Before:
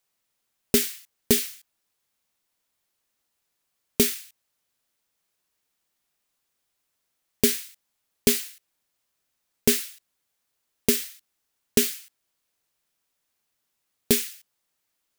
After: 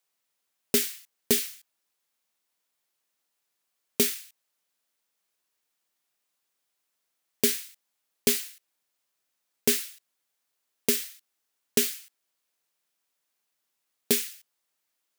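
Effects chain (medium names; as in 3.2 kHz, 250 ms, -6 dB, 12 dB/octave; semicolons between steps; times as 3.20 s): high-pass 280 Hz 6 dB/octave; trim -2 dB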